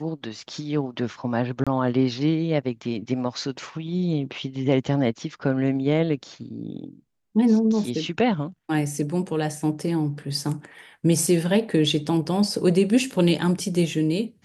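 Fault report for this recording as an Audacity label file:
1.640000	1.670000	drop-out 26 ms

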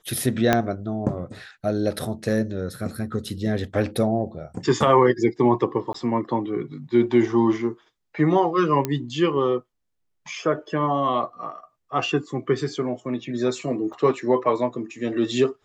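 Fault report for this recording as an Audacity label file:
0.530000	0.530000	click −4 dBFS
5.930000	5.940000	drop-out 14 ms
8.850000	8.850000	click −10 dBFS
13.930000	13.930000	drop-out 4.1 ms

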